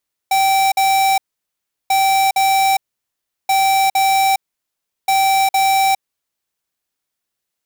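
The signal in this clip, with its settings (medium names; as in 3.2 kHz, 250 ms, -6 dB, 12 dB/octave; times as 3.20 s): beep pattern square 776 Hz, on 0.41 s, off 0.05 s, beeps 2, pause 0.72 s, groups 4, -14 dBFS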